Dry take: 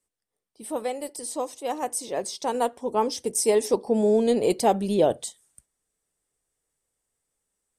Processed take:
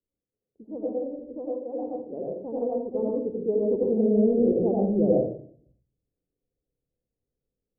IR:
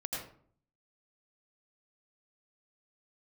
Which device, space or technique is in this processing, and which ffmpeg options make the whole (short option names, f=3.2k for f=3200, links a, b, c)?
next room: -filter_complex "[0:a]lowpass=f=480:w=0.5412,lowpass=f=480:w=1.3066[a];[1:a]atrim=start_sample=2205[b];[a][b]afir=irnorm=-1:irlink=0"